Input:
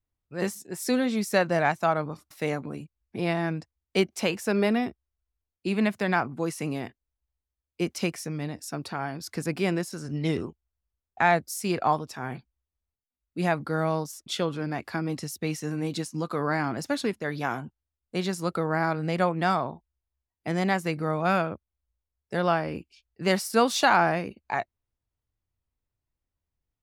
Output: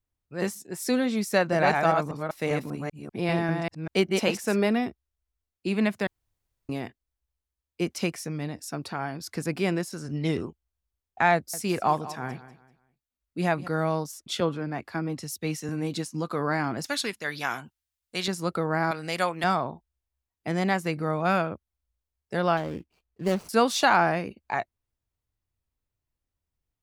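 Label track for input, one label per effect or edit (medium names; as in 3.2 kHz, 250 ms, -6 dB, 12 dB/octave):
1.330000	4.560000	chunks repeated in reverse 196 ms, level -3 dB
6.070000	6.690000	room tone
11.340000	13.680000	feedback delay 194 ms, feedback 30%, level -15.5 dB
14.400000	15.690000	three bands expanded up and down depth 70%
16.840000	18.280000	tilt shelf lows -8 dB, about 1.1 kHz
18.910000	19.440000	tilt EQ +3.5 dB/octave
22.570000	23.490000	median filter over 25 samples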